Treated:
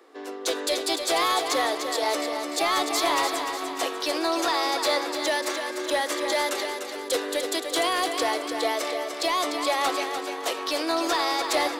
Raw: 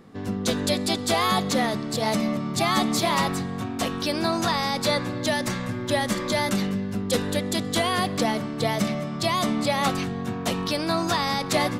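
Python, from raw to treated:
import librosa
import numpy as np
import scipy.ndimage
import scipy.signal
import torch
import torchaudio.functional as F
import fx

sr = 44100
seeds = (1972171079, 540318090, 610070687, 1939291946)

p1 = scipy.signal.sosfilt(scipy.signal.butter(12, 300.0, 'highpass', fs=sr, output='sos'), x)
p2 = 10.0 ** (-20.0 / 20.0) * (np.abs((p1 / 10.0 ** (-20.0 / 20.0) + 3.0) % 4.0 - 2.0) - 1.0)
p3 = p1 + (p2 * librosa.db_to_amplitude(-7.0))
p4 = fx.echo_feedback(p3, sr, ms=297, feedback_pct=48, wet_db=-7.0)
y = p4 * librosa.db_to_amplitude(-3.0)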